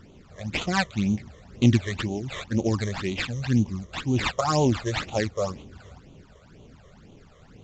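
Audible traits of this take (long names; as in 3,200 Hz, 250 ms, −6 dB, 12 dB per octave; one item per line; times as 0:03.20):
aliases and images of a low sample rate 6,100 Hz, jitter 20%
phaser sweep stages 12, 2 Hz, lowest notch 250–1,700 Hz
Ogg Vorbis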